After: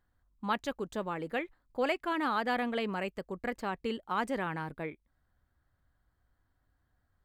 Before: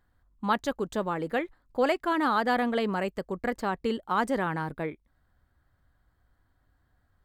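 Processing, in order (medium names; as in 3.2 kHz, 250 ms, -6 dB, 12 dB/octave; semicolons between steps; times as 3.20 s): dynamic bell 2.5 kHz, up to +7 dB, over -49 dBFS, Q 2.4; trim -6 dB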